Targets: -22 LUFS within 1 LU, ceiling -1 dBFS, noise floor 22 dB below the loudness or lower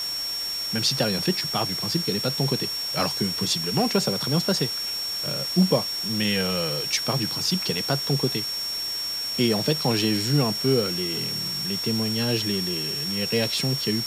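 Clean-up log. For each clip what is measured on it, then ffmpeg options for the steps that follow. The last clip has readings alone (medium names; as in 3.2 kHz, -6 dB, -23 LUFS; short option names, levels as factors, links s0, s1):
steady tone 5.5 kHz; tone level -27 dBFS; noise floor -30 dBFS; noise floor target -46 dBFS; loudness -23.5 LUFS; peak level -7.0 dBFS; loudness target -22.0 LUFS
-> -af "bandreject=f=5500:w=30"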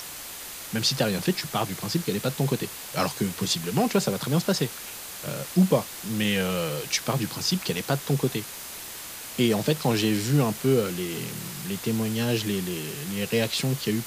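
steady tone not found; noise floor -39 dBFS; noise floor target -49 dBFS
-> -af "afftdn=nr=10:nf=-39"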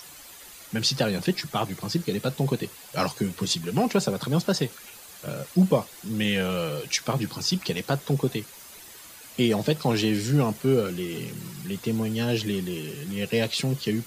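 noise floor -46 dBFS; noise floor target -49 dBFS
-> -af "afftdn=nr=6:nf=-46"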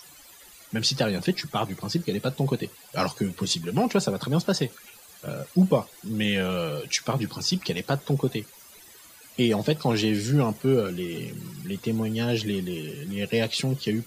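noise floor -50 dBFS; loudness -26.5 LUFS; peak level -7.5 dBFS; loudness target -22.0 LUFS
-> -af "volume=1.68"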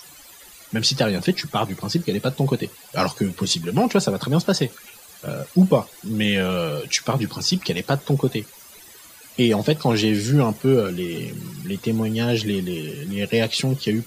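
loudness -22.0 LUFS; peak level -3.0 dBFS; noise floor -46 dBFS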